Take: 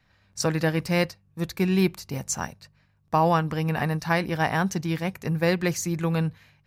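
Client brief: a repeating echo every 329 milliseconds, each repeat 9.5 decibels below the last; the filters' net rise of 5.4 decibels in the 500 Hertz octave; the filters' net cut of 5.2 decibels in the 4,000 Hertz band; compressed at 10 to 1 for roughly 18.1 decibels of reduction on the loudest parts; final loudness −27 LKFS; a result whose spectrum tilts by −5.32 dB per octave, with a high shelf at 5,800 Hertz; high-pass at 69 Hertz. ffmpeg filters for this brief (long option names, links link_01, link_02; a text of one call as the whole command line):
ffmpeg -i in.wav -af "highpass=69,equalizer=frequency=500:width_type=o:gain=6.5,equalizer=frequency=4000:width_type=o:gain=-9,highshelf=frequency=5800:gain=3,acompressor=threshold=-33dB:ratio=10,aecho=1:1:329|658|987|1316:0.335|0.111|0.0365|0.012,volume=10.5dB" out.wav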